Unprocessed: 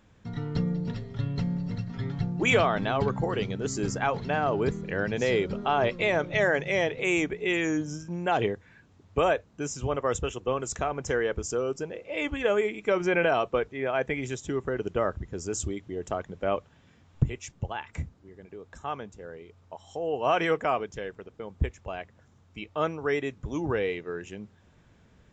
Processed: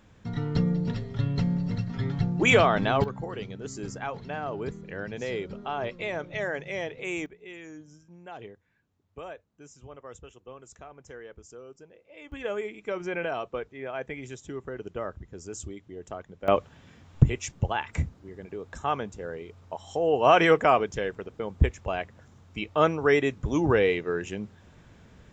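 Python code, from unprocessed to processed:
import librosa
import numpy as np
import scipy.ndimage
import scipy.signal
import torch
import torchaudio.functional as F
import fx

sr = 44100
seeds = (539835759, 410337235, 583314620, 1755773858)

y = fx.gain(x, sr, db=fx.steps((0.0, 3.0), (3.04, -7.0), (7.26, -17.0), (12.32, -7.0), (16.48, 6.0)))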